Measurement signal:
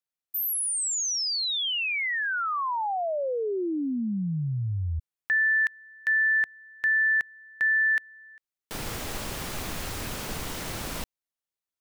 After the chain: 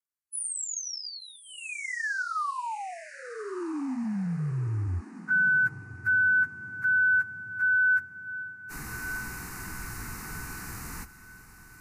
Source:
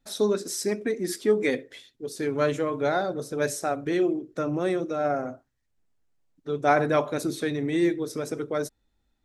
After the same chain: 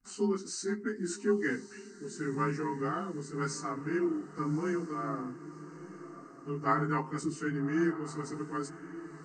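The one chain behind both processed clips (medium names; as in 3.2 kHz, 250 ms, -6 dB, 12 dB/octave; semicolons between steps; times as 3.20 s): frequency axis rescaled in octaves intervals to 92%; static phaser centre 1.4 kHz, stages 4; echo that smears into a reverb 1176 ms, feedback 42%, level -14 dB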